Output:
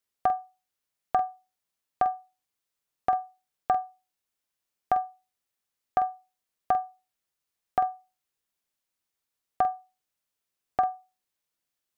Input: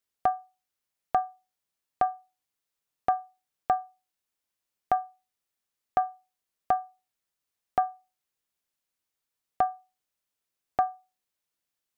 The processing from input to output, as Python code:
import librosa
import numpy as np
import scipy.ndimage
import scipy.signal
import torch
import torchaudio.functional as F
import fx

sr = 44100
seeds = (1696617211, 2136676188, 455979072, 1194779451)

y = fx.doubler(x, sr, ms=47.0, db=-11.0)